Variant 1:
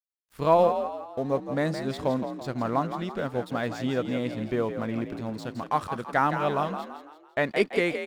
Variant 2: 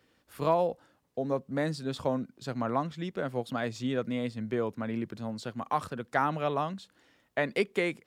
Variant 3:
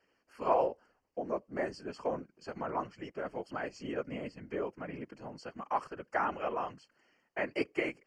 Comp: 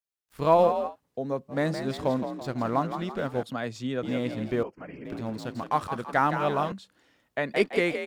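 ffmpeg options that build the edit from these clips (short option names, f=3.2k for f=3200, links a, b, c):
-filter_complex "[1:a]asplit=3[a][b][c];[0:a]asplit=5[d][e][f][g][h];[d]atrim=end=0.96[i];[a]atrim=start=0.86:end=1.58[j];[e]atrim=start=1.48:end=3.432[k];[b]atrim=start=3.428:end=4.032[l];[f]atrim=start=4.028:end=4.632[m];[2:a]atrim=start=4.628:end=5.052[n];[g]atrim=start=5.048:end=6.722[o];[c]atrim=start=6.718:end=7.542[p];[h]atrim=start=7.538[q];[i][j]acrossfade=d=0.1:c1=tri:c2=tri[r];[r][k]acrossfade=d=0.1:c1=tri:c2=tri[s];[s][l]acrossfade=d=0.004:c1=hsin:c2=hsin[t];[t][m]acrossfade=d=0.004:c1=hsin:c2=hsin[u];[u][n]acrossfade=d=0.004:c1=hsin:c2=hsin[v];[v][o]acrossfade=d=0.004:c1=hsin:c2=hsin[w];[w][p]acrossfade=d=0.004:c1=hsin:c2=hsin[x];[x][q]acrossfade=d=0.004:c1=hsin:c2=hsin"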